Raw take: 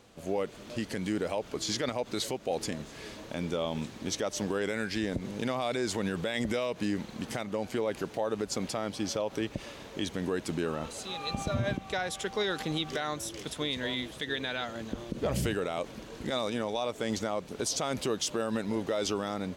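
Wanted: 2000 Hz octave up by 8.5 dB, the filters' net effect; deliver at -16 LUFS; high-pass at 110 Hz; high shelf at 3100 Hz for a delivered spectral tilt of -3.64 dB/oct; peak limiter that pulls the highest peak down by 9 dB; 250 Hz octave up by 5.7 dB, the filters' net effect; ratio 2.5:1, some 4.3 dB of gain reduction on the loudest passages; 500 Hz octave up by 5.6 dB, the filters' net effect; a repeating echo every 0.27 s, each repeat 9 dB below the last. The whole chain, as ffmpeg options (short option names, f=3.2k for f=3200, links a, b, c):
-af "highpass=110,equalizer=f=250:t=o:g=6,equalizer=f=500:t=o:g=4.5,equalizer=f=2k:t=o:g=9,highshelf=f=3.1k:g=4,acompressor=threshold=-27dB:ratio=2.5,alimiter=limit=-23.5dB:level=0:latency=1,aecho=1:1:270|540|810|1080:0.355|0.124|0.0435|0.0152,volume=17.5dB"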